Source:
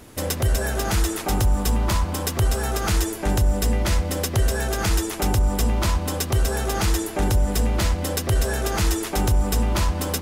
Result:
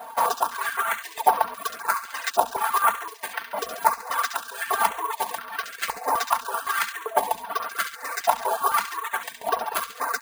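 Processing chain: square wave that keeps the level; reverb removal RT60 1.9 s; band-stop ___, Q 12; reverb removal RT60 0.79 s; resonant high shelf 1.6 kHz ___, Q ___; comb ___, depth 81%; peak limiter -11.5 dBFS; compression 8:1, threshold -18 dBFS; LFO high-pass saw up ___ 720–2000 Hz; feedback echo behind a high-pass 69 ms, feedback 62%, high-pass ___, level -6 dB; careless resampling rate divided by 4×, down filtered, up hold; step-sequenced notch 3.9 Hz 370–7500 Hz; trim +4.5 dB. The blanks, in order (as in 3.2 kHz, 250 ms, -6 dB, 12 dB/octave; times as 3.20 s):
1.3 kHz, -8 dB, 1.5, 4.4 ms, 0.85 Hz, 2.1 kHz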